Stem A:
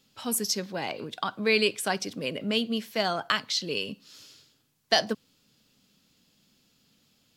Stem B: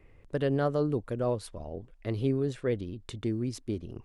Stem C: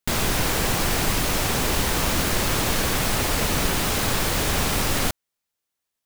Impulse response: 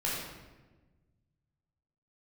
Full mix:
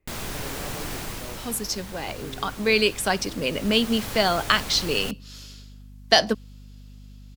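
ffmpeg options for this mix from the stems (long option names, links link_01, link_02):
-filter_complex "[0:a]dynaudnorm=framelen=470:gausssize=7:maxgain=11.5dB,aeval=exprs='val(0)+0.00794*(sin(2*PI*50*n/s)+sin(2*PI*2*50*n/s)/2+sin(2*PI*3*50*n/s)/3+sin(2*PI*4*50*n/s)/4+sin(2*PI*5*50*n/s)/5)':channel_layout=same,adelay=1200,volume=-1dB[link_01];[1:a]volume=-13dB[link_02];[2:a]volume=-3dB,afade=type=out:start_time=0.93:duration=0.69:silence=0.375837,afade=type=in:start_time=3.43:duration=0.61:silence=0.446684[link_03];[link_01][link_02][link_03]amix=inputs=3:normalize=0"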